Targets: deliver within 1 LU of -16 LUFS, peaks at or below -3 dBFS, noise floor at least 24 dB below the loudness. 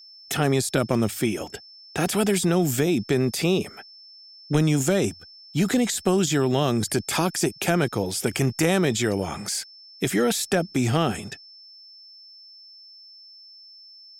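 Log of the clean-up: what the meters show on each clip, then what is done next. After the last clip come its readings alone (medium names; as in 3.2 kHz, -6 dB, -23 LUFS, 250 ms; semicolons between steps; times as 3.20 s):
steady tone 5.3 kHz; tone level -45 dBFS; loudness -23.5 LUFS; peak level -6.5 dBFS; loudness target -16.0 LUFS
-> band-stop 5.3 kHz, Q 30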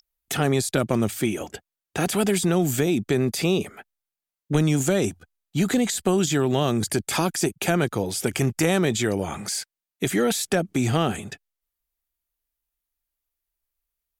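steady tone not found; loudness -23.5 LUFS; peak level -6.5 dBFS; loudness target -16.0 LUFS
-> trim +7.5 dB; peak limiter -3 dBFS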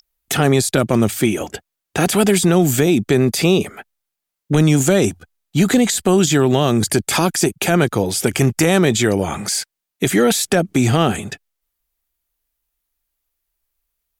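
loudness -16.5 LUFS; peak level -3.0 dBFS; noise floor -82 dBFS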